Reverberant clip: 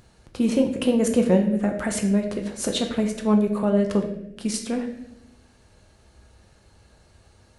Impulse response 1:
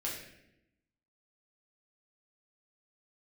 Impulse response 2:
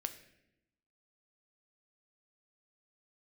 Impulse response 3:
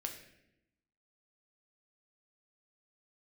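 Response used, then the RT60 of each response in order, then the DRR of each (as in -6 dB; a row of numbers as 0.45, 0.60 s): 3; 0.85, 0.85, 0.85 s; -5.0, 8.0, 3.0 dB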